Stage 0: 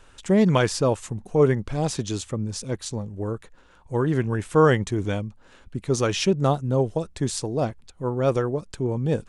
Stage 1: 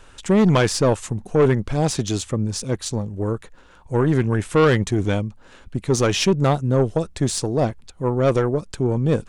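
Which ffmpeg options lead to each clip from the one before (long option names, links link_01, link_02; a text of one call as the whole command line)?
ffmpeg -i in.wav -af "aeval=exprs='0.531*(cos(1*acos(clip(val(0)/0.531,-1,1)))-cos(1*PI/2))+0.0841*(cos(5*acos(clip(val(0)/0.531,-1,1)))-cos(5*PI/2))+0.0266*(cos(8*acos(clip(val(0)/0.531,-1,1)))-cos(8*PI/2))':channel_layout=same" out.wav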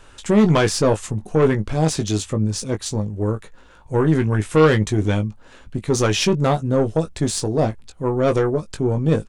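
ffmpeg -i in.wav -filter_complex "[0:a]asplit=2[link_01][link_02];[link_02]adelay=19,volume=-7dB[link_03];[link_01][link_03]amix=inputs=2:normalize=0" out.wav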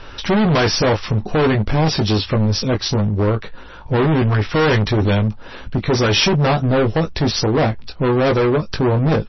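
ffmpeg -i in.wav -filter_complex "[0:a]asplit=2[link_01][link_02];[link_02]acompressor=threshold=-24dB:ratio=16,volume=-3dB[link_03];[link_01][link_03]amix=inputs=2:normalize=0,volume=19.5dB,asoftclip=hard,volume=-19.5dB,volume=7dB" -ar 22050 -c:a libmp3lame -b:a 24k out.mp3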